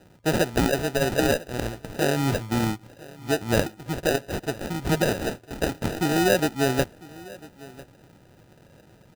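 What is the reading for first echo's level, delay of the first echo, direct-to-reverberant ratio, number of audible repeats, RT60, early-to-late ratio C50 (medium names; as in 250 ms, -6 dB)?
-21.0 dB, 999 ms, no reverb, 1, no reverb, no reverb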